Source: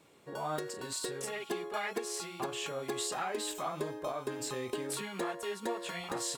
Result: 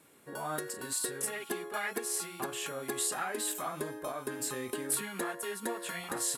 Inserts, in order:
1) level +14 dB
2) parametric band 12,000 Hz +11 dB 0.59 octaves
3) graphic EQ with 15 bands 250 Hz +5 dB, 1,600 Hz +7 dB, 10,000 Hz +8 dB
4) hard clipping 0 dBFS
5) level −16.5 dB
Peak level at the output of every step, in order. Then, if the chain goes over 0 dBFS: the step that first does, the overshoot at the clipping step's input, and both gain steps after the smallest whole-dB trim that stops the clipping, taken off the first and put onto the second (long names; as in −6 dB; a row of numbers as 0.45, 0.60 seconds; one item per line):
−10.0, −6.5, −2.0, −2.0, −18.5 dBFS
no step passes full scale